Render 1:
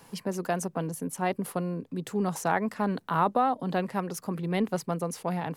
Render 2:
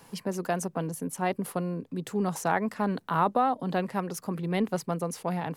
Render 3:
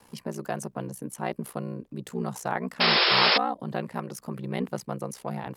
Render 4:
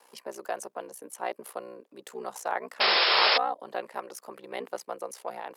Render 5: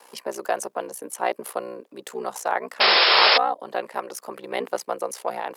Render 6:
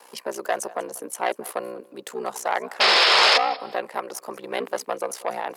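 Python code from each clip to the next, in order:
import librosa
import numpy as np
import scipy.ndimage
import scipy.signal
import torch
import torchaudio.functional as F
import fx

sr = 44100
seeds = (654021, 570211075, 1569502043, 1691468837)

y1 = x
y2 = y1 * np.sin(2.0 * np.pi * 31.0 * np.arange(len(y1)) / sr)
y2 = fx.spec_paint(y2, sr, seeds[0], shape='noise', start_s=2.8, length_s=0.58, low_hz=330.0, high_hz=5400.0, level_db=-21.0)
y3 = fx.ladder_highpass(y2, sr, hz=360.0, resonance_pct=20)
y3 = F.gain(torch.from_numpy(y3), 3.5).numpy()
y4 = fx.rider(y3, sr, range_db=3, speed_s=2.0)
y4 = F.gain(torch.from_numpy(y4), 5.5).numpy()
y5 = fx.echo_feedback(y4, sr, ms=190, feedback_pct=25, wet_db=-21)
y5 = fx.transformer_sat(y5, sr, knee_hz=3000.0)
y5 = F.gain(torch.from_numpy(y5), 1.0).numpy()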